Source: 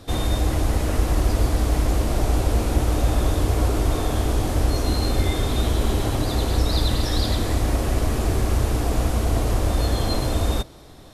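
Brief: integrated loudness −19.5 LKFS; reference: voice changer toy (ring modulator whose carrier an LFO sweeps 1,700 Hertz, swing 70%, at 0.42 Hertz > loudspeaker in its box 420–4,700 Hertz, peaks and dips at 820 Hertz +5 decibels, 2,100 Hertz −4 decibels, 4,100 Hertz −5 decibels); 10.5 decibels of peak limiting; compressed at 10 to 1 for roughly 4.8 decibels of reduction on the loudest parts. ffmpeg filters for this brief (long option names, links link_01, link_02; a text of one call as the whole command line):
ffmpeg -i in.wav -af "acompressor=threshold=-19dB:ratio=10,alimiter=limit=-22.5dB:level=0:latency=1,aeval=exprs='val(0)*sin(2*PI*1700*n/s+1700*0.7/0.42*sin(2*PI*0.42*n/s))':channel_layout=same,highpass=420,equalizer=frequency=820:width_type=q:width=4:gain=5,equalizer=frequency=2100:width_type=q:width=4:gain=-4,equalizer=frequency=4100:width_type=q:width=4:gain=-5,lowpass=frequency=4700:width=0.5412,lowpass=frequency=4700:width=1.3066,volume=12dB" out.wav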